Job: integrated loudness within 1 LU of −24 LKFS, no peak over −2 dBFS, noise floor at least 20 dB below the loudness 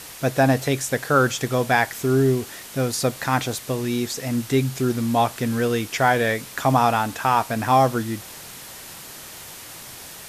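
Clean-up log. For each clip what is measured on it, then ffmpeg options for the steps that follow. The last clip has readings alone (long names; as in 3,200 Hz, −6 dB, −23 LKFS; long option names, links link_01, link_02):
background noise floor −40 dBFS; target noise floor −42 dBFS; integrated loudness −21.5 LKFS; sample peak −4.5 dBFS; target loudness −24.0 LKFS
→ -af "afftdn=noise_reduction=6:noise_floor=-40"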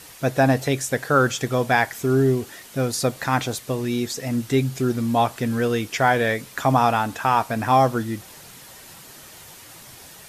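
background noise floor −44 dBFS; integrated loudness −22.0 LKFS; sample peak −4.5 dBFS; target loudness −24.0 LKFS
→ -af "volume=-2dB"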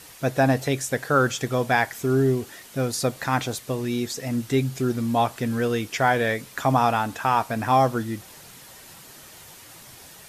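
integrated loudness −24.0 LKFS; sample peak −6.5 dBFS; background noise floor −46 dBFS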